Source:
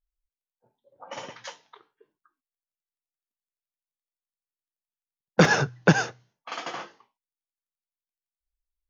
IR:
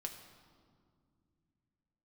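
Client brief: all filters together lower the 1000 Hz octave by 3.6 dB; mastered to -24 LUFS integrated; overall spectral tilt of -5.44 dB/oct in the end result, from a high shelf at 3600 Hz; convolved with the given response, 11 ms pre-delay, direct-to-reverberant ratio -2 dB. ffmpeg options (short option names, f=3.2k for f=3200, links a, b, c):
-filter_complex "[0:a]equalizer=f=1k:t=o:g=-4.5,highshelf=f=3.6k:g=-5,asplit=2[a][b];[1:a]atrim=start_sample=2205,adelay=11[c];[b][c]afir=irnorm=-1:irlink=0,volume=4dB[d];[a][d]amix=inputs=2:normalize=0,volume=-3dB"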